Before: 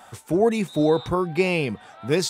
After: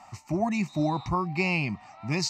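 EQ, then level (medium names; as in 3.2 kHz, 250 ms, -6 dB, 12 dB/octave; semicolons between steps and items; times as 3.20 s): low-pass 9.3 kHz 12 dB/octave; static phaser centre 2.3 kHz, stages 8; 0.0 dB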